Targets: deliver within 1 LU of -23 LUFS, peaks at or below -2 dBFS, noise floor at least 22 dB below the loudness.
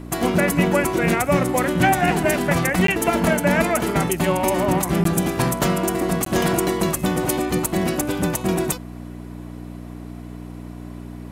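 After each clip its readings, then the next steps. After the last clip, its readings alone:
dropouts 3; longest dropout 13 ms; hum 60 Hz; highest harmonic 300 Hz; hum level -33 dBFS; loudness -20.0 LUFS; peak level -5.0 dBFS; loudness target -23.0 LUFS
-> interpolate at 2.87/5.04/6.25 s, 13 ms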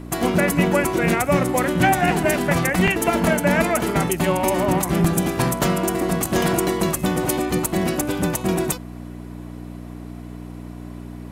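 dropouts 0; hum 60 Hz; highest harmonic 300 Hz; hum level -33 dBFS
-> de-hum 60 Hz, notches 5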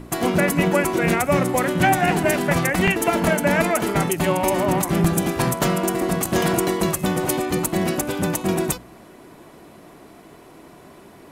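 hum not found; loudness -20.5 LUFS; peak level -5.0 dBFS; loudness target -23.0 LUFS
-> trim -2.5 dB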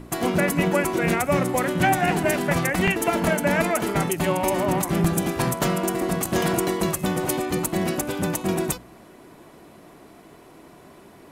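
loudness -23.0 LUFS; peak level -7.5 dBFS; noise floor -48 dBFS

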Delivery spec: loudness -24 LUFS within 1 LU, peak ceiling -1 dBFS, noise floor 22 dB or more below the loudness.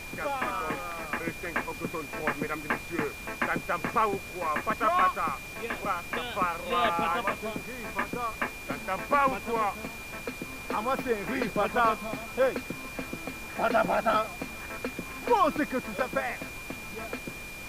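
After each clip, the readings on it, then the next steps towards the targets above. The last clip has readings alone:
steady tone 2.4 kHz; tone level -41 dBFS; noise floor -41 dBFS; noise floor target -52 dBFS; loudness -30.0 LUFS; peak level -13.0 dBFS; loudness target -24.0 LUFS
-> band-stop 2.4 kHz, Q 30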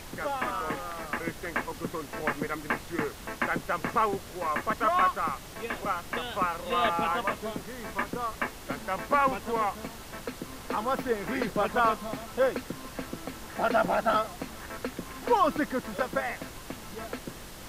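steady tone not found; noise floor -44 dBFS; noise floor target -53 dBFS
-> noise print and reduce 9 dB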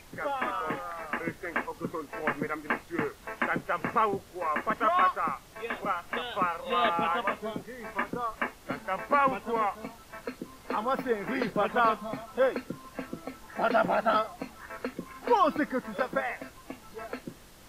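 noise floor -52 dBFS; loudness -30.0 LUFS; peak level -13.0 dBFS; loudness target -24.0 LUFS
-> trim +6 dB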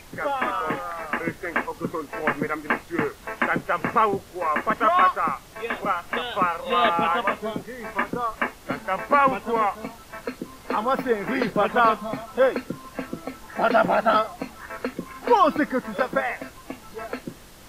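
loudness -24.0 LUFS; peak level -7.0 dBFS; noise floor -46 dBFS

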